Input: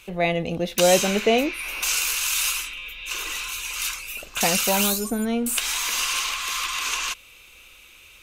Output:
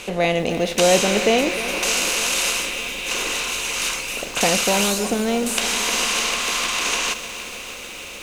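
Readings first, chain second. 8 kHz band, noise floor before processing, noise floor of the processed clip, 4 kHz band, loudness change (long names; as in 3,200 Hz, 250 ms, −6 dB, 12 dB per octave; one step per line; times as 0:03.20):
+3.0 dB, −50 dBFS, −35 dBFS, +4.0 dB, +3.0 dB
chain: compressor on every frequency bin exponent 0.6
low-pass filter 9,200 Hz 12 dB per octave
feedback echo at a low word length 303 ms, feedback 80%, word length 6 bits, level −13.5 dB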